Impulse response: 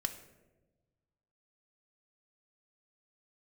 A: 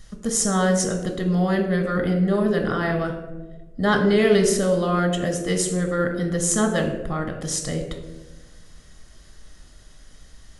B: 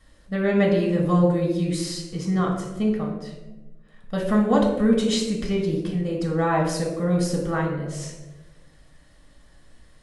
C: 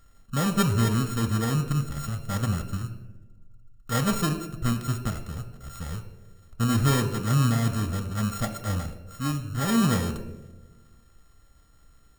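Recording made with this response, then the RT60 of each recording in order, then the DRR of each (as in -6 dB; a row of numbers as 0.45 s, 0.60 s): C; 1.2 s, 1.2 s, 1.2 s; 2.0 dB, -2.5 dB, 7.0 dB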